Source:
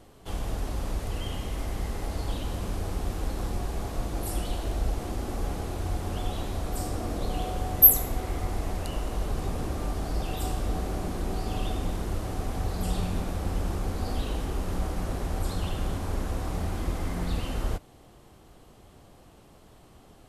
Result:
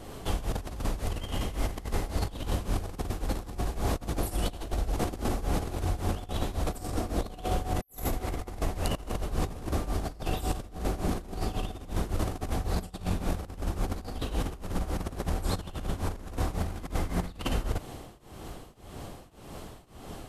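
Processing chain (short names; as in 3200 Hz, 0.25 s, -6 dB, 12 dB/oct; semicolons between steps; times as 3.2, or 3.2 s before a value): tremolo triangle 1.8 Hz, depth 95%; negative-ratio compressor -38 dBFS, ratio -0.5; gain +7.5 dB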